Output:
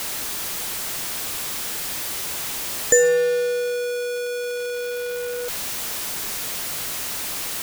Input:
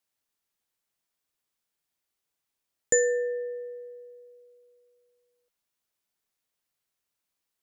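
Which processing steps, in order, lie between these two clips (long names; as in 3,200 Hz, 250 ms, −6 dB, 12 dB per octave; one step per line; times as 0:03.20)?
converter with a step at zero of −27 dBFS
level +5.5 dB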